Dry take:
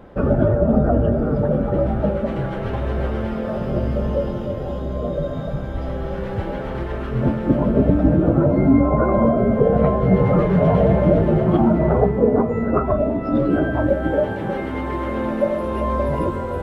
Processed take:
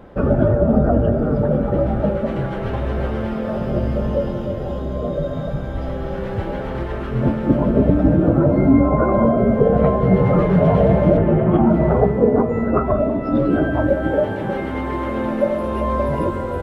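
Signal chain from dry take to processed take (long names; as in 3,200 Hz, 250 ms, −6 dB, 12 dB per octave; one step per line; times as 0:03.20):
0:11.17–0:11.70: low-pass filter 2,900 Hz 24 dB per octave
on a send: single-tap delay 192 ms −15.5 dB
on the sum: level +1 dB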